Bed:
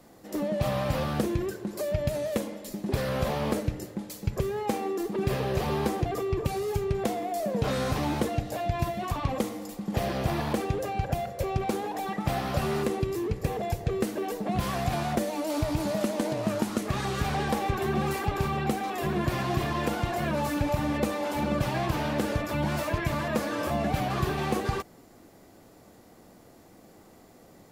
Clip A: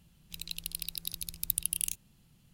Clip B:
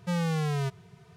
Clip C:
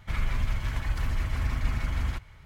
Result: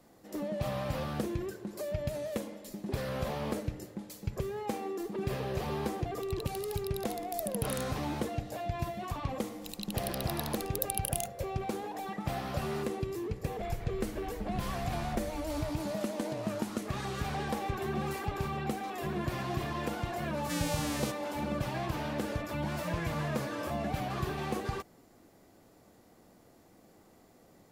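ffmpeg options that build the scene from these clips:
ffmpeg -i bed.wav -i cue0.wav -i cue1.wav -i cue2.wav -filter_complex "[1:a]asplit=2[link_01][link_02];[2:a]asplit=2[link_03][link_04];[0:a]volume=-6.5dB[link_05];[3:a]aresample=11025,aresample=44100[link_06];[link_03]crystalizer=i=10:c=0[link_07];[link_01]atrim=end=2.53,asetpts=PTS-STARTPTS,volume=-9dB,afade=type=in:duration=0.004:curve=hsin,afade=type=out:start_time=2.526:duration=0.004:curve=hsin,adelay=259749S[link_08];[link_02]atrim=end=2.53,asetpts=PTS-STARTPTS,volume=-3.5dB,afade=type=in:duration=0.004:curve=hsin,afade=type=out:start_time=2.526:duration=0.004:curve=hsin,adelay=9320[link_09];[link_06]atrim=end=2.45,asetpts=PTS-STARTPTS,volume=-14.5dB,afade=type=in:duration=0.004:curve=hsin,afade=type=out:start_time=2.446:duration=0.004:curve=hsin,adelay=13510[link_10];[link_07]atrim=end=1.16,asetpts=PTS-STARTPTS,volume=-13dB,afade=type=in:duration=0.004:curve=hsin,afade=type=out:start_time=1.156:duration=0.004:curve=hsin,adelay=20420[link_11];[link_04]atrim=end=1.16,asetpts=PTS-STARTPTS,volume=-10.5dB,afade=type=in:duration=0.004:curve=hsin,afade=type=out:start_time=1.156:duration=0.004:curve=hsin,adelay=22770[link_12];[link_05][link_08][link_09][link_10][link_11][link_12]amix=inputs=6:normalize=0" out.wav

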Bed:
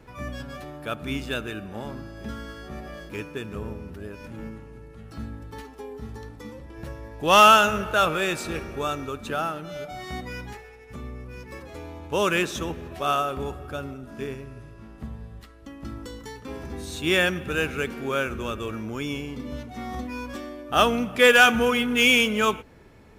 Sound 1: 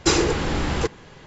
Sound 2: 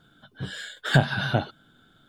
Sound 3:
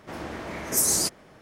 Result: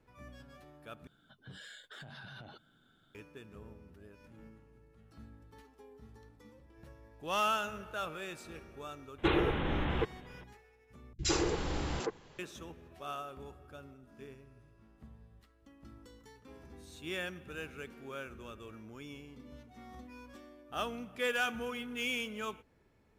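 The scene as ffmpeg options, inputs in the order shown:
ffmpeg -i bed.wav -i cue0.wav -i cue1.wav -filter_complex "[1:a]asplit=2[link_01][link_02];[0:a]volume=-17.5dB[link_03];[2:a]acompressor=threshold=-34dB:ratio=16:attack=0.3:release=84:knee=6:detection=peak[link_04];[link_01]aresample=8000,aresample=44100[link_05];[link_02]acrossover=split=190|1800[link_06][link_07][link_08];[link_08]adelay=60[link_09];[link_07]adelay=100[link_10];[link_06][link_10][link_09]amix=inputs=3:normalize=0[link_11];[link_03]asplit=3[link_12][link_13][link_14];[link_12]atrim=end=1.074[link_15];[link_04]atrim=end=2.08,asetpts=PTS-STARTPTS,volume=-9.5dB[link_16];[link_13]atrim=start=3.146:end=11.134[link_17];[link_11]atrim=end=1.26,asetpts=PTS-STARTPTS,volume=-11dB[link_18];[link_14]atrim=start=12.386[link_19];[link_05]atrim=end=1.26,asetpts=PTS-STARTPTS,volume=-9dB,afade=type=in:duration=0.004:curve=hsin,afade=type=out:start_time=1.256:duration=0.004:curve=hsin,adelay=9180[link_20];[link_15][link_16]acrossfade=duration=0.004:curve1=hsin:curve2=hsin[link_21];[link_21][link_17]acrossfade=duration=0.004:curve1=hsin:curve2=hsin[link_22];[link_22][link_18]acrossfade=duration=0.004:curve1=hsin:curve2=hsin[link_23];[link_23][link_19]acrossfade=duration=0.004:curve1=hsin:curve2=hsin[link_24];[link_24][link_20]amix=inputs=2:normalize=0" out.wav

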